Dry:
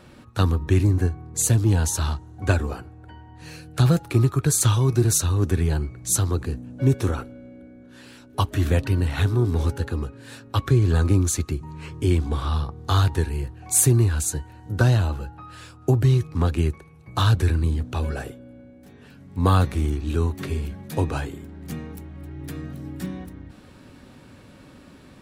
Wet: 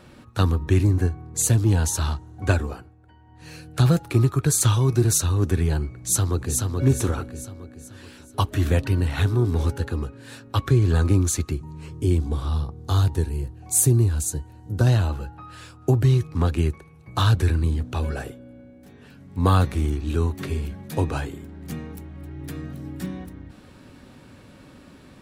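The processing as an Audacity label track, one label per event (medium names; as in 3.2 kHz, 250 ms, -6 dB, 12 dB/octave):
2.550000	3.600000	dip -9.5 dB, fades 0.41 s
5.990000	6.580000	echo throw 430 ms, feedback 45%, level -3.5 dB
11.620000	14.870000	peaking EQ 1.8 kHz -8.5 dB 2.4 oct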